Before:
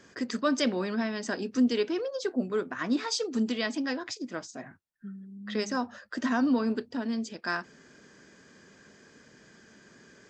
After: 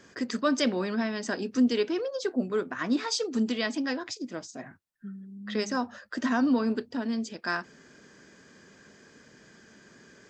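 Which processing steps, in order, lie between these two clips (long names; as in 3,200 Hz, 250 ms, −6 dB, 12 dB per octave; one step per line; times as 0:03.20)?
0:04.03–0:04.59: dynamic equaliser 1,400 Hz, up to −6 dB, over −51 dBFS, Q 0.9
level +1 dB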